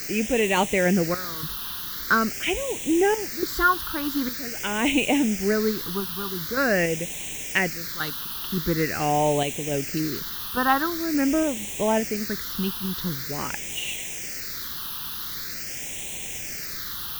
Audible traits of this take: random-step tremolo, depth 85%; a quantiser's noise floor 6-bit, dither triangular; phasing stages 6, 0.45 Hz, lowest notch 580–1300 Hz

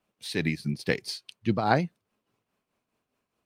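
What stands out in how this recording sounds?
tremolo triangle 4.8 Hz, depth 65%

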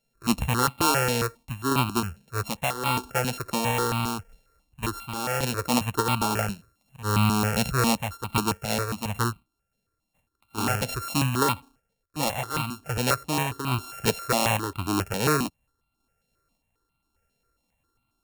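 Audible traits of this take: a buzz of ramps at a fixed pitch in blocks of 32 samples; random-step tremolo; notches that jump at a steady rate 7.4 Hz 320–1700 Hz

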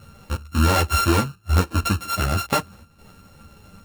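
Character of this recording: a buzz of ramps at a fixed pitch in blocks of 32 samples; chopped level 0.67 Hz, depth 65%, duty 90%; a shimmering, thickened sound

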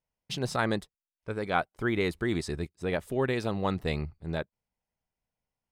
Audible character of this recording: noise floor -95 dBFS; spectral tilt -5.0 dB/oct

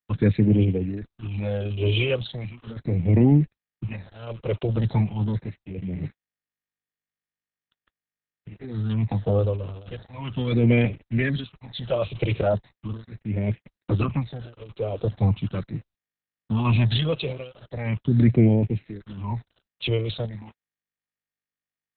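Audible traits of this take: tremolo triangle 0.67 Hz, depth 100%; a quantiser's noise floor 8-bit, dither none; phasing stages 8, 0.39 Hz, lowest notch 230–1200 Hz; Opus

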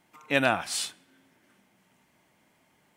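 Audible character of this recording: noise floor -67 dBFS; spectral tilt -3.0 dB/oct

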